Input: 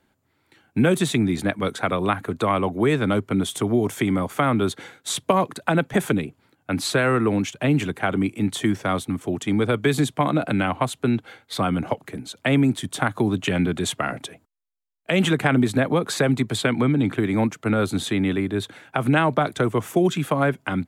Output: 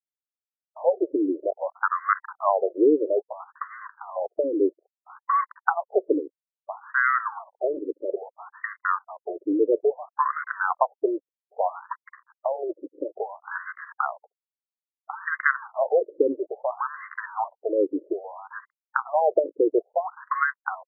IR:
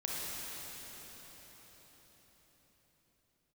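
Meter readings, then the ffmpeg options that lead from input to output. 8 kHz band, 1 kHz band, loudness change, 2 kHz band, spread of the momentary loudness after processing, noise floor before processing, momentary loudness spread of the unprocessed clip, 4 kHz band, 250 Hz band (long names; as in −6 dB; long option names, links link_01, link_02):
below −40 dB, 0.0 dB, −3.5 dB, −2.0 dB, 15 LU, −68 dBFS, 7 LU, below −40 dB, −9.5 dB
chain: -af "aeval=exprs='sgn(val(0))*max(abs(val(0))-0.0237,0)':channel_layout=same,afftfilt=real='re*between(b*sr/1024,390*pow(1500/390,0.5+0.5*sin(2*PI*0.6*pts/sr))/1.41,390*pow(1500/390,0.5+0.5*sin(2*PI*0.6*pts/sr))*1.41)':imag='im*between(b*sr/1024,390*pow(1500/390,0.5+0.5*sin(2*PI*0.6*pts/sr))/1.41,390*pow(1500/390,0.5+0.5*sin(2*PI*0.6*pts/sr))*1.41)':win_size=1024:overlap=0.75,volume=5dB"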